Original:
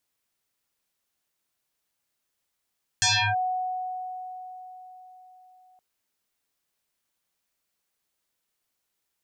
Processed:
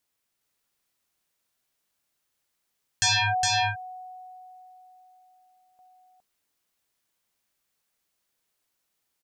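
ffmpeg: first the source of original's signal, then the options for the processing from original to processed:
-f lavfi -i "aevalsrc='0.126*pow(10,-3*t/4.41)*sin(2*PI*739*t+8.5*clip(1-t/0.33,0,1)*sin(2*PI*1.14*739*t))':d=2.77:s=44100"
-af "aecho=1:1:412:0.708"

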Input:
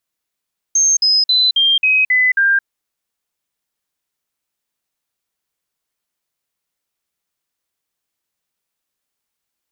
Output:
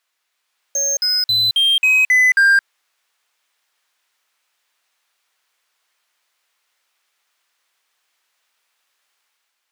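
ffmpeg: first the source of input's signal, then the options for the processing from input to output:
-f lavfi -i "aevalsrc='0.316*clip(min(mod(t,0.27),0.22-mod(t,0.27))/0.005,0,1)*sin(2*PI*6380*pow(2,-floor(t/0.27)/3)*mod(t,0.27))':d=1.89:s=44100"
-filter_complex "[0:a]highpass=f=1400:p=1,dynaudnorm=f=110:g=9:m=1.58,asplit=2[s0][s1];[s1]highpass=f=720:p=1,volume=14.1,asoftclip=type=tanh:threshold=0.501[s2];[s0][s2]amix=inputs=2:normalize=0,lowpass=f=1800:p=1,volume=0.501"

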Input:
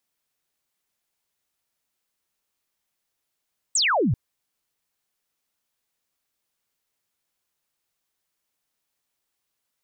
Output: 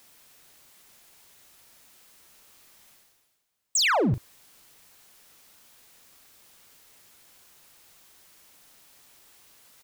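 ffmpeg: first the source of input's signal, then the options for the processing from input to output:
-f lavfi -i "aevalsrc='0.126*clip(t/0.002,0,1)*clip((0.39-t)/0.002,0,1)*sin(2*PI*8500*0.39/log(97/8500)*(exp(log(97/8500)*t/0.39)-1))':d=0.39:s=44100"
-filter_complex "[0:a]areverse,acompressor=mode=upward:threshold=0.0141:ratio=2.5,areverse,asoftclip=type=hard:threshold=0.0944,asplit=2[s0][s1];[s1]adelay=40,volume=0.251[s2];[s0][s2]amix=inputs=2:normalize=0"

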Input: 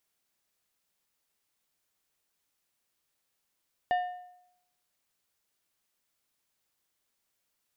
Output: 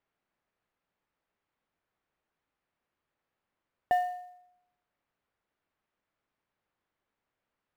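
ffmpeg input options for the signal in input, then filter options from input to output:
-f lavfi -i "aevalsrc='0.0794*pow(10,-3*t/0.79)*sin(2*PI*721*t)+0.0251*pow(10,-3*t/0.6)*sin(2*PI*1802.5*t)+0.00794*pow(10,-3*t/0.521)*sin(2*PI*2884*t)+0.00251*pow(10,-3*t/0.487)*sin(2*PI*3605*t)+0.000794*pow(10,-3*t/0.451)*sin(2*PI*4686.5*t)':d=1.55:s=44100"
-filter_complex "[0:a]lowpass=1800,asplit=2[s0][s1];[s1]acrusher=bits=4:mode=log:mix=0:aa=0.000001,volume=0.422[s2];[s0][s2]amix=inputs=2:normalize=0"

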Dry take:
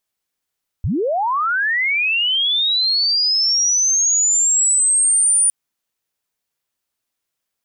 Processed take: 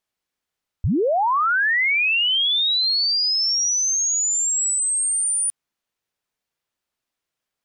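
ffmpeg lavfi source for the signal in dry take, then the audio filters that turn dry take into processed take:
-f lavfi -i "aevalsrc='pow(10,(-16.5+5*t/4.66)/20)*sin(2*PI*(62*t+9438*t*t/(2*4.66)))':d=4.66:s=44100"
-af "highshelf=f=6600:g=-10"

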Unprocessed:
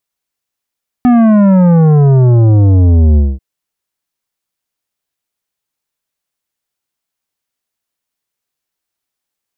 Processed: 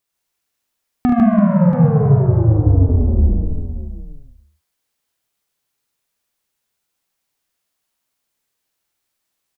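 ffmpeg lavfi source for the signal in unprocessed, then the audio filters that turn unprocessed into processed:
-f lavfi -i "aevalsrc='0.531*clip((2.34-t)/0.22,0,1)*tanh(3.55*sin(2*PI*250*2.34/log(65/250)*(exp(log(65/250)*t/2.34)-1)))/tanh(3.55)':d=2.34:s=44100"
-filter_complex "[0:a]asplit=2[s0][s1];[s1]asplit=4[s2][s3][s4][s5];[s2]adelay=133,afreqshift=-36,volume=0.562[s6];[s3]adelay=266,afreqshift=-72,volume=0.186[s7];[s4]adelay=399,afreqshift=-108,volume=0.061[s8];[s5]adelay=532,afreqshift=-144,volume=0.0202[s9];[s6][s7][s8][s9]amix=inputs=4:normalize=0[s10];[s0][s10]amix=inputs=2:normalize=0,acompressor=threshold=0.141:ratio=3,asplit=2[s11][s12];[s12]aecho=0:1:44|73|149|335|682:0.447|0.501|0.668|0.266|0.282[s13];[s11][s13]amix=inputs=2:normalize=0"

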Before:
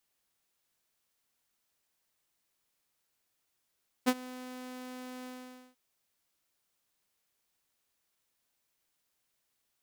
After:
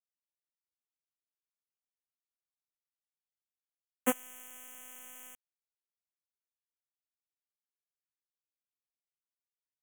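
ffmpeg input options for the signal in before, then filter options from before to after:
-f lavfi -i "aevalsrc='0.119*(2*mod(253*t,1)-1)':d=1.692:s=44100,afade=t=in:d=0.023,afade=t=out:st=0.023:d=0.052:silence=0.0891,afade=t=out:st=1.2:d=0.492"
-filter_complex "[0:a]acrossover=split=6600[s0][s1];[s1]crystalizer=i=2:c=0[s2];[s0][s2]amix=inputs=2:normalize=0,aeval=exprs='val(0)*gte(abs(val(0)),0.0355)':c=same,asuperstop=centerf=4500:order=12:qfactor=1.6"

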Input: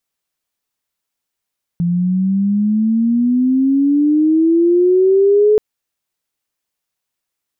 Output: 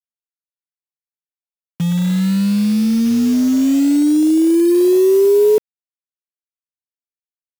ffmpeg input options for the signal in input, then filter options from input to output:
-f lavfi -i "aevalsrc='pow(10,(-13+5.5*t/3.78)/20)*sin(2*PI*170*3.78/log(430/170)*(exp(log(430/170)*t/3.78)-1))':d=3.78:s=44100"
-af "afwtdn=0.158,acrusher=bits=4:mix=0:aa=0.000001"

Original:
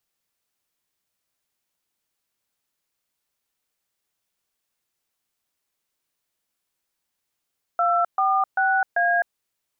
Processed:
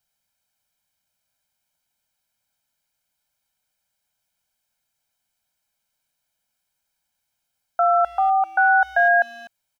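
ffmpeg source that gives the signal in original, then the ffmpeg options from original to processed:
-f lavfi -i "aevalsrc='0.1*clip(min(mod(t,0.391),0.258-mod(t,0.391))/0.002,0,1)*(eq(floor(t/0.391),0)*(sin(2*PI*697*mod(t,0.391))+sin(2*PI*1336*mod(t,0.391)))+eq(floor(t/0.391),1)*(sin(2*PI*770*mod(t,0.391))+sin(2*PI*1209*mod(t,0.391)))+eq(floor(t/0.391),2)*(sin(2*PI*770*mod(t,0.391))+sin(2*PI*1477*mod(t,0.391)))+eq(floor(t/0.391),3)*(sin(2*PI*697*mod(t,0.391))+sin(2*PI*1633*mod(t,0.391))))':d=1.564:s=44100"
-filter_complex "[0:a]aecho=1:1:1.3:0.77,asplit=2[s0][s1];[s1]adelay=250,highpass=300,lowpass=3400,asoftclip=type=hard:threshold=0.126,volume=0.112[s2];[s0][s2]amix=inputs=2:normalize=0"

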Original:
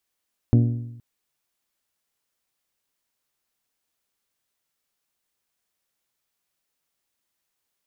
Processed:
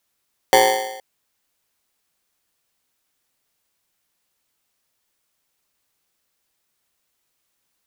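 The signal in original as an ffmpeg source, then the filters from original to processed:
-f lavfi -i "aevalsrc='0.266*pow(10,-3*t/0.93)*sin(2*PI*118*t)+0.141*pow(10,-3*t/0.755)*sin(2*PI*236*t)+0.075*pow(10,-3*t/0.715)*sin(2*PI*283.2*t)+0.0398*pow(10,-3*t/0.669)*sin(2*PI*354*t)+0.0211*pow(10,-3*t/0.614)*sin(2*PI*472*t)+0.0112*pow(10,-3*t/0.574)*sin(2*PI*590*t)+0.00596*pow(10,-3*t/0.543)*sin(2*PI*708*t)':d=0.47:s=44100"
-filter_complex "[0:a]asplit=2[s0][s1];[s1]alimiter=limit=0.119:level=0:latency=1,volume=1.12[s2];[s0][s2]amix=inputs=2:normalize=0,aeval=exprs='val(0)*sgn(sin(2*PI*650*n/s))':c=same"

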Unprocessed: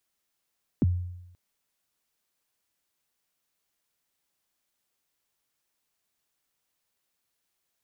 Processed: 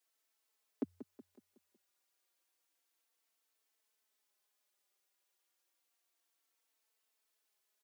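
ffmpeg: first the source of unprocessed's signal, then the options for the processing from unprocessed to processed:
-f lavfi -i "aevalsrc='0.141*pow(10,-3*t/0.89)*sin(2*PI*(340*0.027/log(89/340)*(exp(log(89/340)*min(t,0.027)/0.027)-1)+89*max(t-0.027,0)))':d=0.53:s=44100"
-filter_complex "[0:a]highpass=f=310:w=0.5412,highpass=f=310:w=1.3066,aecho=1:1:185|370|555|740|925:0.237|0.111|0.0524|0.0246|0.0116,asplit=2[s0][s1];[s1]adelay=4,afreqshift=-0.3[s2];[s0][s2]amix=inputs=2:normalize=1"

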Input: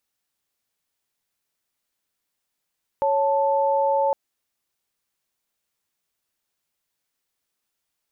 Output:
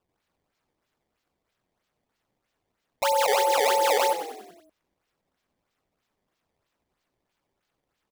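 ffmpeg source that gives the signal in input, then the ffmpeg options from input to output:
-f lavfi -i "aevalsrc='0.0944*(sin(2*PI*554.37*t)+sin(2*PI*880*t))':d=1.11:s=44100"
-filter_complex "[0:a]highpass=f=470:p=1,acrusher=samples=19:mix=1:aa=0.000001:lfo=1:lforange=30.4:lforate=3.1,asplit=2[s0][s1];[s1]asplit=6[s2][s3][s4][s5][s6][s7];[s2]adelay=94,afreqshift=-41,volume=0.299[s8];[s3]adelay=188,afreqshift=-82,volume=0.164[s9];[s4]adelay=282,afreqshift=-123,volume=0.0902[s10];[s5]adelay=376,afreqshift=-164,volume=0.0495[s11];[s6]adelay=470,afreqshift=-205,volume=0.0272[s12];[s7]adelay=564,afreqshift=-246,volume=0.015[s13];[s8][s9][s10][s11][s12][s13]amix=inputs=6:normalize=0[s14];[s0][s14]amix=inputs=2:normalize=0"

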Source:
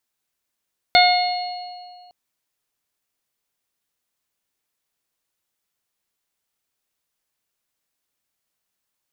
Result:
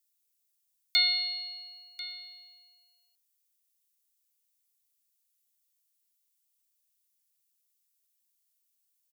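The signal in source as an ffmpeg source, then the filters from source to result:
-f lavfi -i "aevalsrc='0.266*pow(10,-3*t/2.02)*sin(2*PI*719*t)+0.0841*pow(10,-3*t/0.62)*sin(2*PI*1438*t)+0.188*pow(10,-3*t/1.13)*sin(2*PI*2157*t)+0.0335*pow(10,-3*t/2.11)*sin(2*PI*2876*t)+0.126*pow(10,-3*t/0.9)*sin(2*PI*3595*t)+0.168*pow(10,-3*t/1.79)*sin(2*PI*4314*t)':d=1.16:s=44100"
-af "highpass=1500,aderivative,aecho=1:1:1041:0.158"

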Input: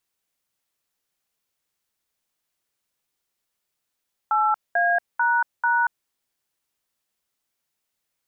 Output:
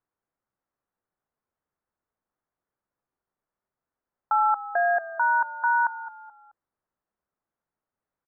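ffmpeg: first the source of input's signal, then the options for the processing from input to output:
-f lavfi -i "aevalsrc='0.1*clip(min(mod(t,0.442),0.233-mod(t,0.442))/0.002,0,1)*(eq(floor(t/0.442),0)*(sin(2*PI*852*mod(t,0.442))+sin(2*PI*1336*mod(t,0.442)))+eq(floor(t/0.442),1)*(sin(2*PI*697*mod(t,0.442))+sin(2*PI*1633*mod(t,0.442)))+eq(floor(t/0.442),2)*(sin(2*PI*941*mod(t,0.442))+sin(2*PI*1477*mod(t,0.442)))+eq(floor(t/0.442),3)*(sin(2*PI*941*mod(t,0.442))+sin(2*PI*1477*mod(t,0.442))))':d=1.768:s=44100"
-filter_complex "[0:a]lowpass=f=1500:w=0.5412,lowpass=f=1500:w=1.3066,asplit=4[s0][s1][s2][s3];[s1]adelay=215,afreqshift=-34,volume=0.178[s4];[s2]adelay=430,afreqshift=-68,volume=0.0661[s5];[s3]adelay=645,afreqshift=-102,volume=0.0243[s6];[s0][s4][s5][s6]amix=inputs=4:normalize=0"

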